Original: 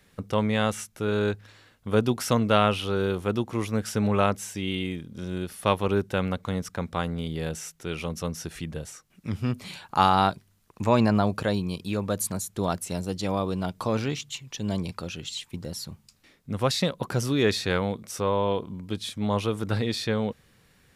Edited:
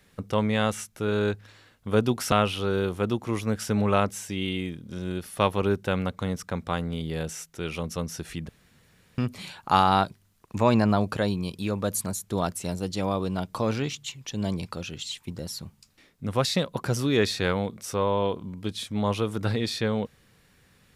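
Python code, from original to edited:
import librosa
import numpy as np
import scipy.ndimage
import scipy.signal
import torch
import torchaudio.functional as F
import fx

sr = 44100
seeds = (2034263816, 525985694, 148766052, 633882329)

y = fx.edit(x, sr, fx.cut(start_s=2.32, length_s=0.26),
    fx.room_tone_fill(start_s=8.75, length_s=0.69), tone=tone)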